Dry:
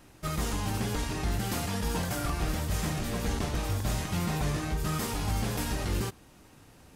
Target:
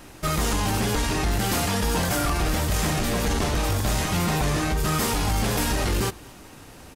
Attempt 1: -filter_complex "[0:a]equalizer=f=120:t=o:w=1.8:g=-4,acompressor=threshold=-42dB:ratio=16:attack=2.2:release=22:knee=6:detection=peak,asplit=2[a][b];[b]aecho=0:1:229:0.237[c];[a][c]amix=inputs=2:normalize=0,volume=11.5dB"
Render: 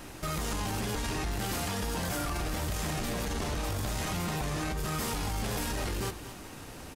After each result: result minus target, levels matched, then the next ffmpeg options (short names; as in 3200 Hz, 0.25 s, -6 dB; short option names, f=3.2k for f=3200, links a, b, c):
compressor: peak gain reduction +10.5 dB; echo-to-direct +11.5 dB
-filter_complex "[0:a]equalizer=f=120:t=o:w=1.8:g=-4,acompressor=threshold=-30.5dB:ratio=16:attack=2.2:release=22:knee=6:detection=peak,asplit=2[a][b];[b]aecho=0:1:229:0.237[c];[a][c]amix=inputs=2:normalize=0,volume=11.5dB"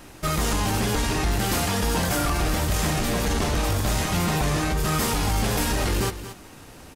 echo-to-direct +11.5 dB
-filter_complex "[0:a]equalizer=f=120:t=o:w=1.8:g=-4,acompressor=threshold=-30.5dB:ratio=16:attack=2.2:release=22:knee=6:detection=peak,asplit=2[a][b];[b]aecho=0:1:229:0.0631[c];[a][c]amix=inputs=2:normalize=0,volume=11.5dB"